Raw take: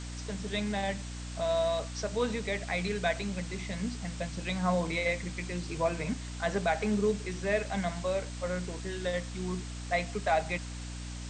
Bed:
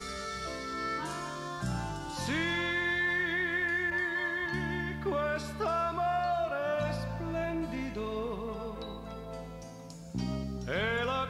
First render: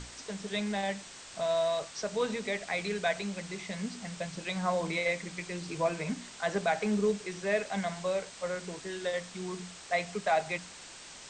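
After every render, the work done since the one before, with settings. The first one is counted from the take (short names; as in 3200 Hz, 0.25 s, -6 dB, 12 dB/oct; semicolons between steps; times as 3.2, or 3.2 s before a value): notches 60/120/180/240/300 Hz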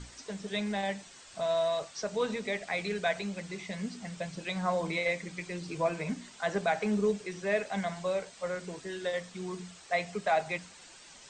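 denoiser 8 dB, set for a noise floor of -49 dBFS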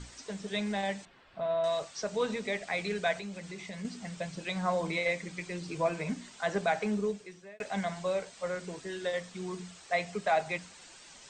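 1.05–1.64 air absorption 420 m; 3.17–3.85 compressor 2:1, threshold -40 dBFS; 6.76–7.6 fade out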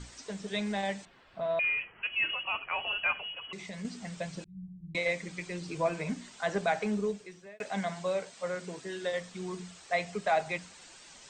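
1.59–3.53 inverted band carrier 3100 Hz; 4.44–4.95 inverse Chebyshev low-pass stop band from 510 Hz, stop band 60 dB; 7.46–9.12 HPF 100 Hz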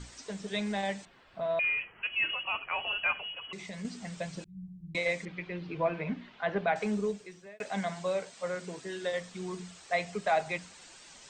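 5.25–6.76 LPF 3300 Hz 24 dB/oct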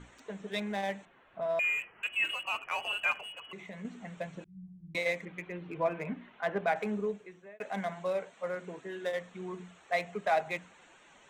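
Wiener smoothing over 9 samples; low shelf 150 Hz -9.5 dB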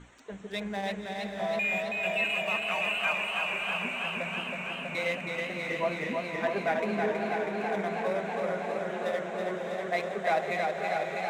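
diffused feedback echo 0.595 s, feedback 56%, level -5 dB; warbling echo 0.323 s, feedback 79%, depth 52 cents, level -4 dB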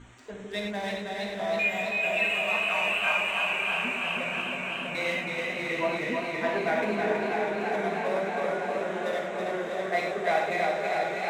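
non-linear reverb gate 0.13 s flat, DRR 0 dB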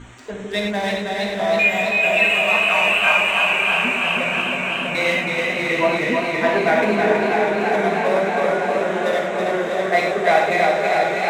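gain +10 dB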